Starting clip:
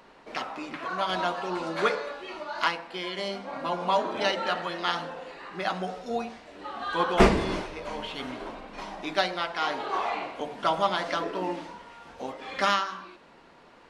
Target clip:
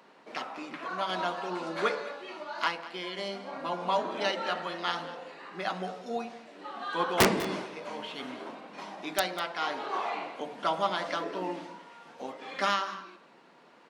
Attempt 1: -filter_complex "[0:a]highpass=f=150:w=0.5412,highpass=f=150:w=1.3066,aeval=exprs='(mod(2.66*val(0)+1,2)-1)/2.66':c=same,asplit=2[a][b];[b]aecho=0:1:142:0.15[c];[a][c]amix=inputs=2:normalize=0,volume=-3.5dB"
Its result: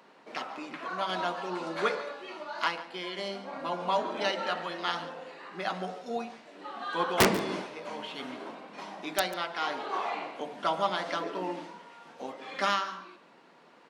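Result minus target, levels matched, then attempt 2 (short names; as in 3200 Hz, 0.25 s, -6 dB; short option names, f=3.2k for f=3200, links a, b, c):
echo 56 ms early
-filter_complex "[0:a]highpass=f=150:w=0.5412,highpass=f=150:w=1.3066,aeval=exprs='(mod(2.66*val(0)+1,2)-1)/2.66':c=same,asplit=2[a][b];[b]aecho=0:1:198:0.15[c];[a][c]amix=inputs=2:normalize=0,volume=-3.5dB"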